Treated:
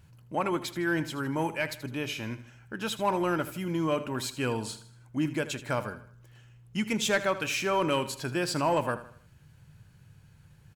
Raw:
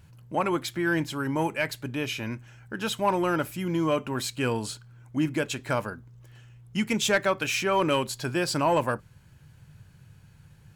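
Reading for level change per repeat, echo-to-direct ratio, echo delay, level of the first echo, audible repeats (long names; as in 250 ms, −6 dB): −7.5 dB, −13.0 dB, 79 ms, −14.0 dB, 3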